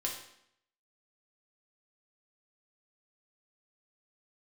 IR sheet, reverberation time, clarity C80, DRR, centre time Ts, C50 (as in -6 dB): 0.70 s, 8.5 dB, -1.5 dB, 32 ms, 5.5 dB